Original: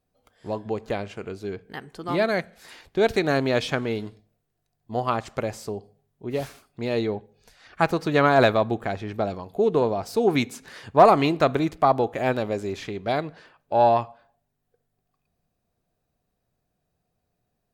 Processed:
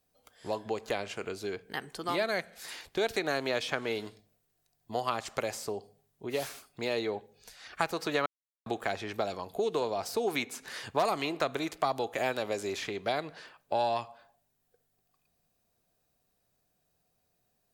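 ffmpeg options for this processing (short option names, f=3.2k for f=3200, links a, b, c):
-filter_complex "[0:a]asplit=3[a][b][c];[a]atrim=end=8.26,asetpts=PTS-STARTPTS,afade=t=out:st=8.256:d=0.004:c=hsin[d];[b]atrim=start=8.26:end=8.66,asetpts=PTS-STARTPTS,volume=0[e];[c]atrim=start=8.66,asetpts=PTS-STARTPTS,afade=t=in:d=0.004:c=hsin[f];[d][e][f]concat=n=3:v=0:a=1,highshelf=f=3.5k:g=8,acrossover=split=340|2600[g][h][i];[g]acompressor=threshold=-40dB:ratio=4[j];[h]acompressor=threshold=-28dB:ratio=4[k];[i]acompressor=threshold=-40dB:ratio=4[l];[j][k][l]amix=inputs=3:normalize=0,lowshelf=f=280:g=-6"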